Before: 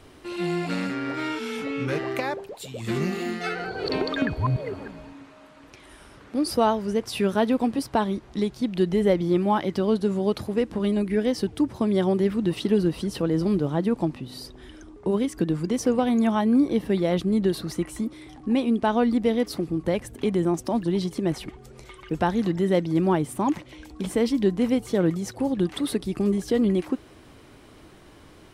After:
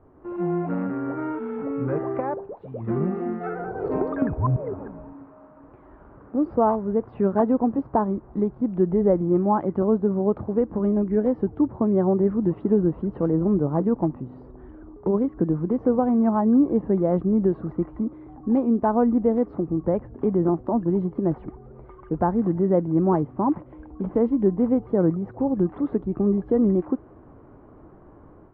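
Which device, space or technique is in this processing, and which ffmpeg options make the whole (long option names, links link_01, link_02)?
action camera in a waterproof case: -af "lowpass=frequency=1200:width=0.5412,lowpass=frequency=1200:width=1.3066,dynaudnorm=framelen=140:gausssize=3:maxgain=6.5dB,volume=-4.5dB" -ar 48000 -c:a aac -b:a 48k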